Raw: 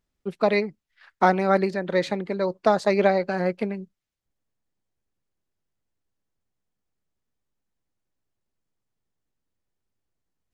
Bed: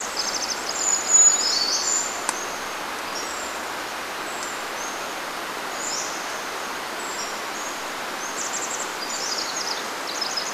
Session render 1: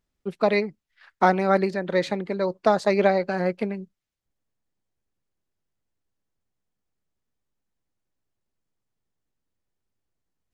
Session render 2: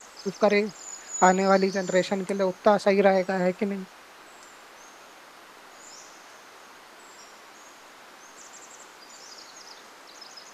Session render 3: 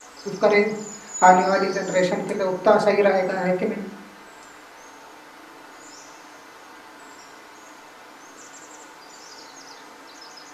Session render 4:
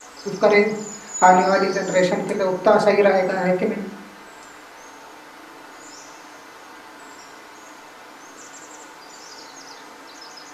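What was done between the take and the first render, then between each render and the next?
no audible change
add bed -18.5 dB
FDN reverb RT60 0.7 s, low-frequency decay 1.35×, high-frequency decay 0.3×, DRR -1.5 dB
trim +2.5 dB; peak limiter -3 dBFS, peak gain reduction 3 dB

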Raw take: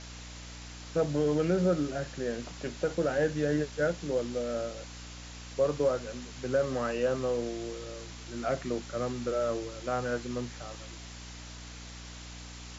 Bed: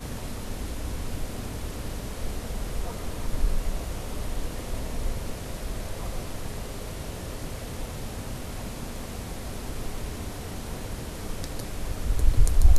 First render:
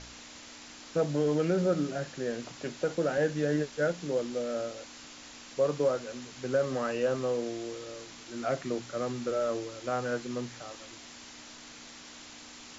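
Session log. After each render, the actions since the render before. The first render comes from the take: de-hum 60 Hz, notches 3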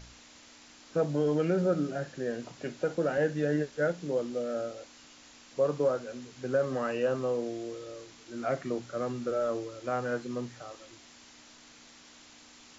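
noise print and reduce 6 dB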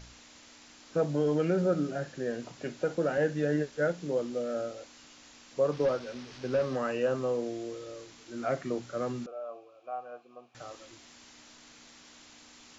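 5.72–6.76 s: one-bit delta coder 32 kbps, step -41.5 dBFS; 9.26–10.55 s: vowel filter a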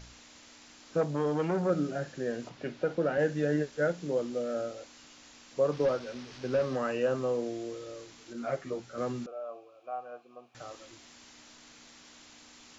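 1.01–1.70 s: transformer saturation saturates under 550 Hz; 2.49–3.19 s: low-pass 4.4 kHz; 8.33–8.98 s: three-phase chorus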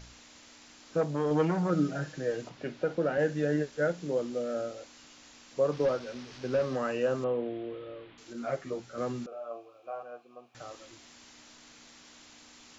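1.30–2.42 s: comb 6.4 ms, depth 68%; 7.24–8.18 s: steep low-pass 3.5 kHz 48 dB/octave; 9.29–10.03 s: doubling 26 ms -2.5 dB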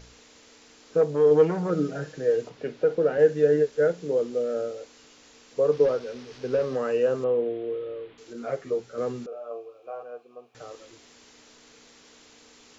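peaking EQ 450 Hz +13.5 dB 0.28 oct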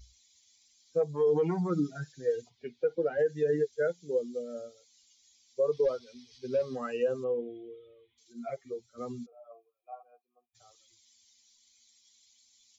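expander on every frequency bin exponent 2; peak limiter -19.5 dBFS, peak gain reduction 9 dB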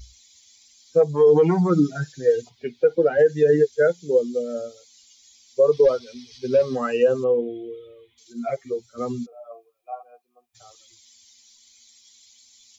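trim +11 dB

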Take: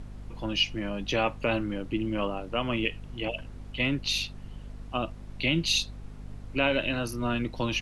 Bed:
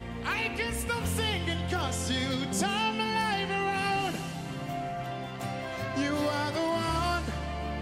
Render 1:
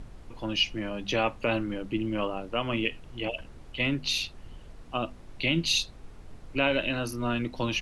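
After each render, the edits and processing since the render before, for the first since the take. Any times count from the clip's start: de-hum 50 Hz, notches 5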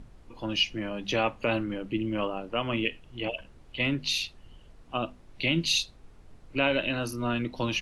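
noise print and reduce 6 dB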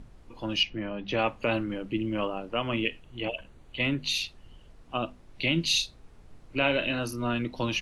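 0.63–1.19 s: distance through air 200 m; 3.02–4.15 s: band-stop 5.2 kHz, Q 5.8; 5.66–6.99 s: doubling 35 ms -9 dB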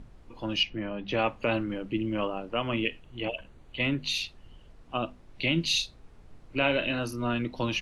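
treble shelf 6.2 kHz -5 dB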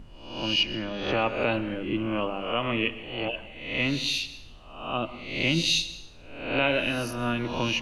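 reverse spectral sustain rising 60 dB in 0.72 s; plate-style reverb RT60 0.81 s, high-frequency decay 0.9×, pre-delay 105 ms, DRR 14 dB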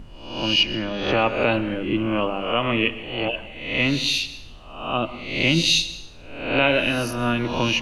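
trim +5.5 dB

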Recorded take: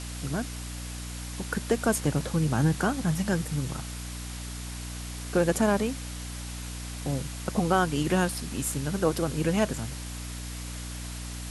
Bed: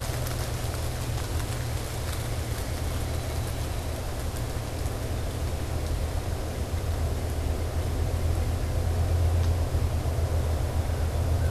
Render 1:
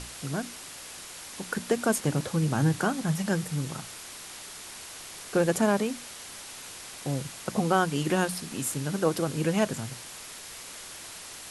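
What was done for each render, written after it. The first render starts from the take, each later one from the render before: hum notches 60/120/180/240/300 Hz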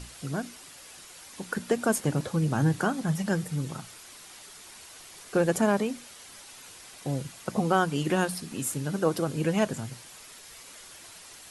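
noise reduction 7 dB, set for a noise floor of -43 dBFS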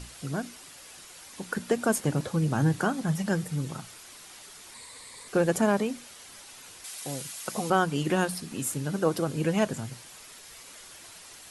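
4.74–5.28 s: rippled EQ curve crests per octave 0.98, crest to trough 11 dB; 6.84–7.70 s: tilt EQ +3 dB/octave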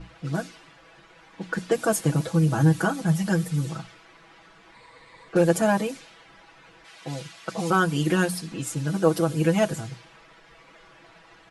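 comb 6.1 ms, depth 99%; level-controlled noise filter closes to 1.6 kHz, open at -21 dBFS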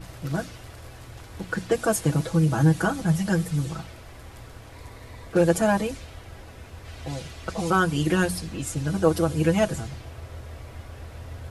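add bed -13 dB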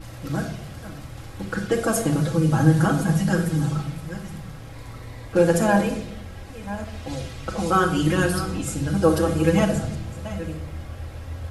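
chunks repeated in reverse 622 ms, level -13 dB; simulated room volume 1900 m³, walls furnished, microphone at 2.2 m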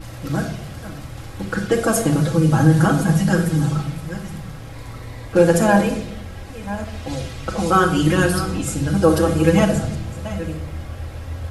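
trim +4 dB; peak limiter -2 dBFS, peak gain reduction 2 dB

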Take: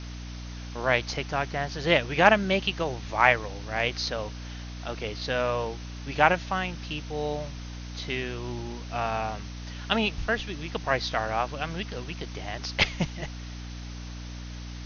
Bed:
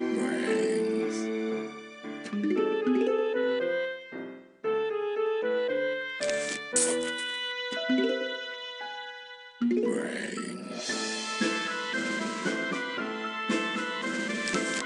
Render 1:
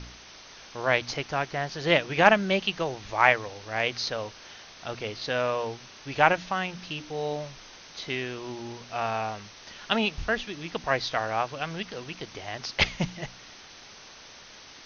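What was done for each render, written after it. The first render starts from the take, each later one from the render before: de-hum 60 Hz, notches 5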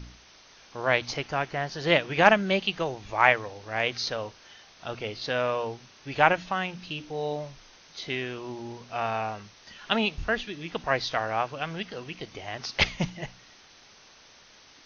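noise print and reduce 6 dB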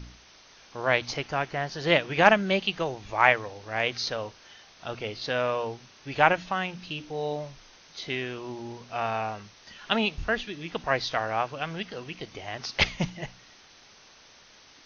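no audible change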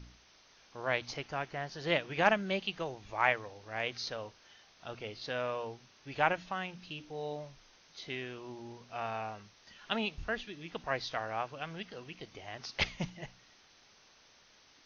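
trim -8.5 dB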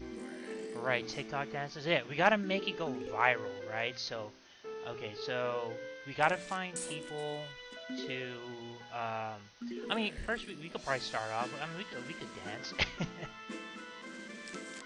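add bed -15.5 dB

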